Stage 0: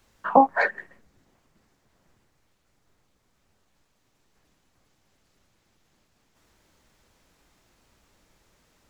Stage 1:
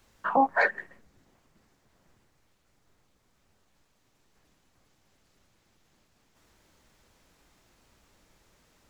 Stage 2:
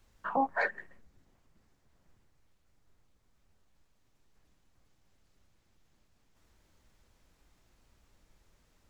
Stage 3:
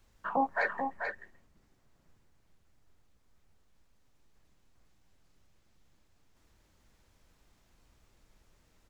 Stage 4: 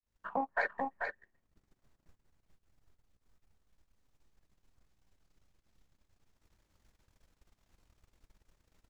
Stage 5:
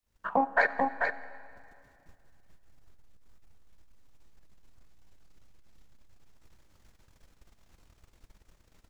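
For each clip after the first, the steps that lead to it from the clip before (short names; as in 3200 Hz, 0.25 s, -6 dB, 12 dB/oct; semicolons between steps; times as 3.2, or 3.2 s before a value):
limiter -12 dBFS, peak gain reduction 10 dB
low shelf 93 Hz +11 dB; gain -7 dB
echo 0.438 s -6 dB
opening faded in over 0.72 s; transient shaper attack +9 dB, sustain -12 dB; gain -5.5 dB
digital reverb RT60 2.4 s, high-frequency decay 0.9×, pre-delay 30 ms, DRR 15 dB; gain +8 dB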